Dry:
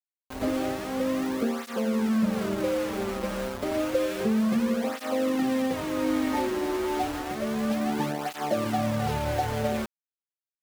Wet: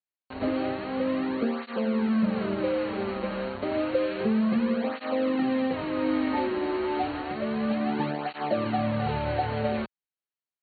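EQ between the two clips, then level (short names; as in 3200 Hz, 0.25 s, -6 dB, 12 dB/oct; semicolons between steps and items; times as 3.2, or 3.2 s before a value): HPF 64 Hz; brick-wall FIR low-pass 4500 Hz; notch 3500 Hz, Q 10; 0.0 dB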